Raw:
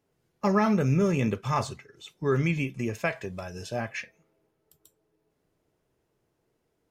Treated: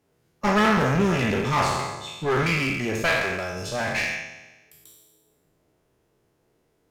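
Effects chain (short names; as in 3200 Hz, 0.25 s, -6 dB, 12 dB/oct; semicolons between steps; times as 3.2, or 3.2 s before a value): spectral trails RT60 1.19 s; dynamic EQ 2000 Hz, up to +5 dB, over -39 dBFS, Q 0.82; one-sided clip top -30.5 dBFS; gain +4 dB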